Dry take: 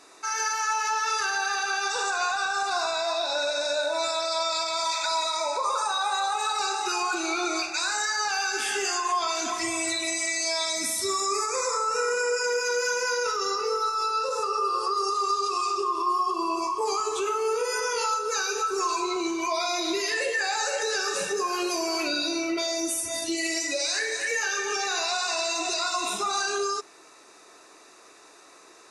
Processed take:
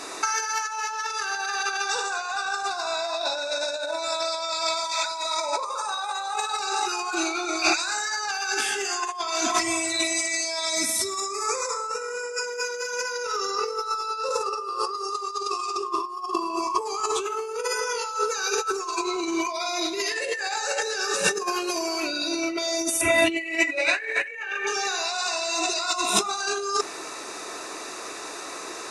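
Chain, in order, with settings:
0:23.01–0:24.67: high shelf with overshoot 3,600 Hz −13 dB, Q 3
compressor whose output falls as the input rises −33 dBFS, ratio −0.5
level +8 dB

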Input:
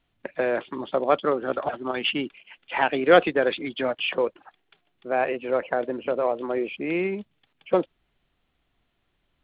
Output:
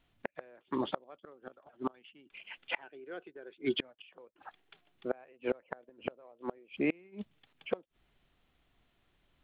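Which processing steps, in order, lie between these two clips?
gate with flip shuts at −19 dBFS, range −32 dB
0:02.83–0:03.79: hollow resonant body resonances 380/1,500 Hz, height 12 dB

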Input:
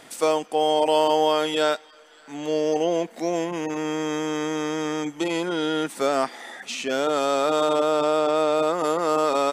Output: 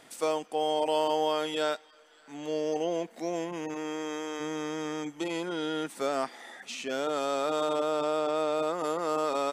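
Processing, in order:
0:03.74–0:04.39: high-pass filter 180 Hz → 370 Hz 12 dB per octave
level −7.5 dB

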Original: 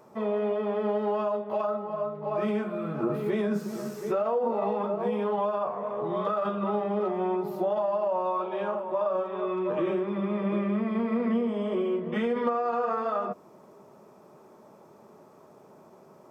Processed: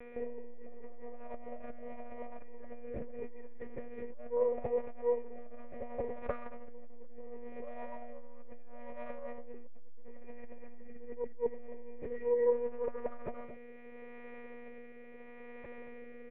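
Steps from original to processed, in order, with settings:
variable-slope delta modulation 32 kbit/s
hum with harmonics 400 Hz, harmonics 33, −44 dBFS −3 dB per octave
formant resonators in series e
one-pitch LPC vocoder at 8 kHz 240 Hz
high-frequency loss of the air 230 metres
single-tap delay 224 ms −11.5 dB
rotating-speaker cabinet horn 0.75 Hz
saturating transformer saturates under 170 Hz
level +14 dB

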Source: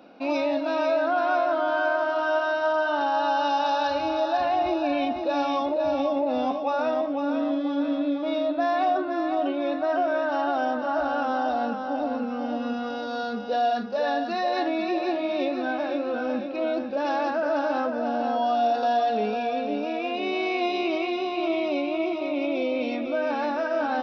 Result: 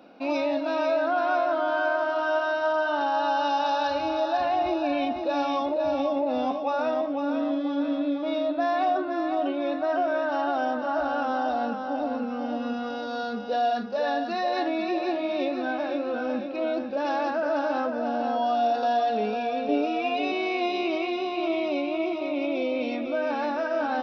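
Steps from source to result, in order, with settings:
0:19.68–0:20.32: comb filter 6.9 ms, depth 94%
level −1 dB

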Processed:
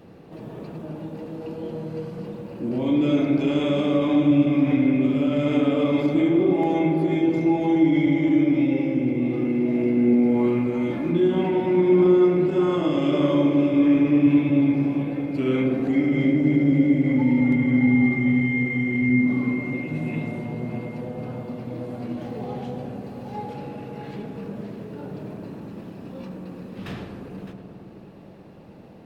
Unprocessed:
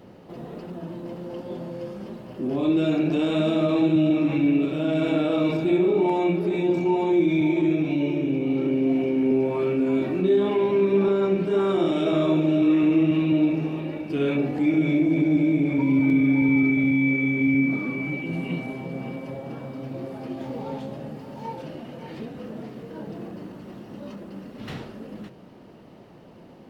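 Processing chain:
feedback echo with a low-pass in the loop 99 ms, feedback 83%, low-pass 1,900 Hz, level −7 dB
wrong playback speed 48 kHz file played as 44.1 kHz

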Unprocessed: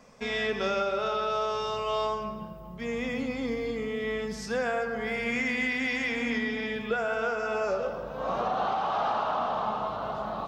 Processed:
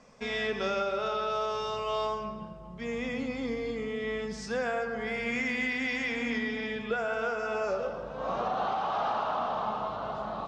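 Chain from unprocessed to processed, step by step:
low-pass filter 8,600 Hz 24 dB per octave
level −2 dB

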